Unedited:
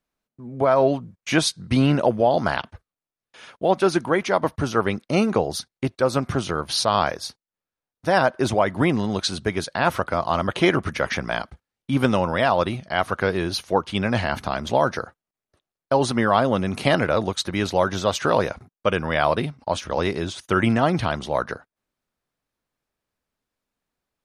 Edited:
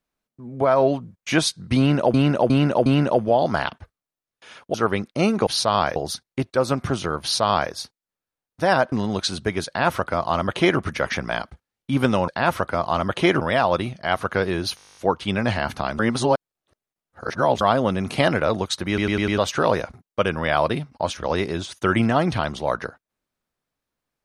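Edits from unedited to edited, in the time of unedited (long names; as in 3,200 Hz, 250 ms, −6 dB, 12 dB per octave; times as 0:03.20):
0:01.78–0:02.14: repeat, 4 plays
0:03.66–0:04.68: remove
0:06.67–0:07.16: duplicate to 0:05.41
0:08.37–0:08.92: remove
0:09.67–0:10.80: duplicate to 0:12.28
0:13.64: stutter 0.02 s, 11 plays
0:14.66–0:16.28: reverse
0:17.55: stutter in place 0.10 s, 5 plays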